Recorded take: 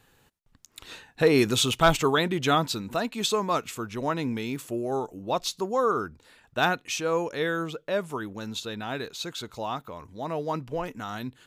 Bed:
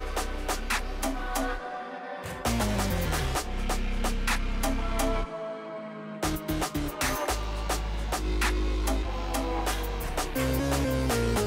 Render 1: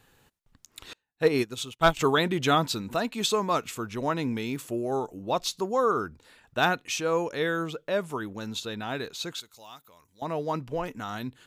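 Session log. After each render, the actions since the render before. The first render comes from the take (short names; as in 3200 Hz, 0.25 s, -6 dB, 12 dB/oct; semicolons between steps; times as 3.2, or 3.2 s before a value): 0.93–1.97 upward expander 2.5:1, over -37 dBFS; 9.4–10.22 pre-emphasis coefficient 0.9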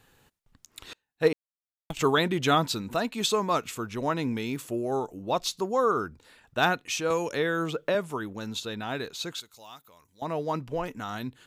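1.33–1.9 mute; 7.1–7.95 three-band squash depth 100%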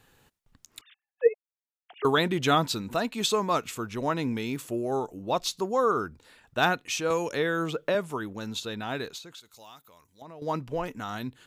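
0.81–2.05 sine-wave speech; 9.18–10.42 compressor 5:1, threshold -43 dBFS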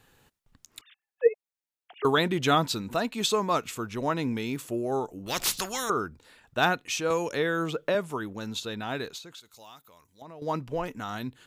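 5.26–5.9 spectral compressor 4:1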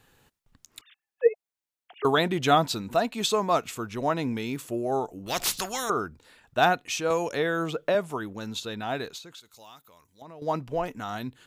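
dynamic EQ 700 Hz, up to +7 dB, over -44 dBFS, Q 3.7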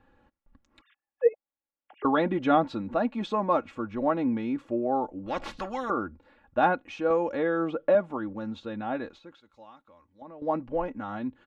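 Bessel low-pass 1200 Hz, order 2; comb 3.6 ms, depth 70%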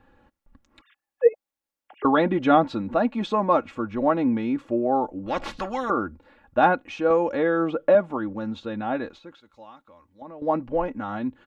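gain +4.5 dB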